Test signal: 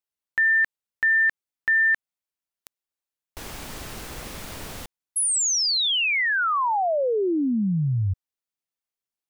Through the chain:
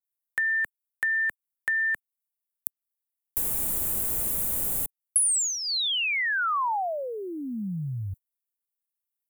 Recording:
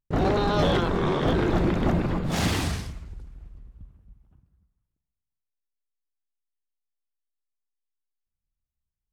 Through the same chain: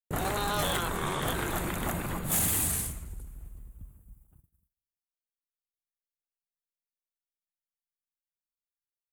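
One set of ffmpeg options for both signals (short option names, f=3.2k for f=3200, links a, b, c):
-filter_complex "[0:a]aexciter=amount=12.5:drive=6.6:freq=7.7k,acrossover=split=160|810[a][b][c];[a]acompressor=threshold=-34dB:ratio=5[d];[b]acompressor=threshold=-38dB:ratio=4[e];[c]acompressor=threshold=-24dB:ratio=5[f];[d][e][f]amix=inputs=3:normalize=0,agate=range=-33dB:threshold=-58dB:ratio=3:release=40:detection=peak,volume=-1dB"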